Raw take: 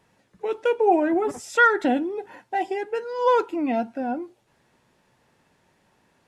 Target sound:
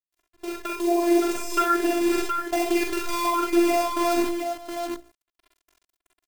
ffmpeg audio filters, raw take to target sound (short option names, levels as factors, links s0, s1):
-af "bandreject=f=60:t=h:w=6,bandreject=f=120:t=h:w=6,bandreject=f=180:t=h:w=6,bandreject=f=240:t=h:w=6,bandreject=f=300:t=h:w=6,bandreject=f=360:t=h:w=6,bandreject=f=420:t=h:w=6,acrusher=bits=6:dc=4:mix=0:aa=0.000001,acompressor=threshold=0.0501:ratio=5,afftfilt=real='hypot(re,im)*cos(PI*b)':imag='0':win_size=512:overlap=0.75,acrusher=bits=6:mode=log:mix=0:aa=0.000001,dynaudnorm=f=470:g=3:m=3.35,aecho=1:1:41|46|65|540|719:0.501|0.473|0.501|0.126|0.501,volume=0.841"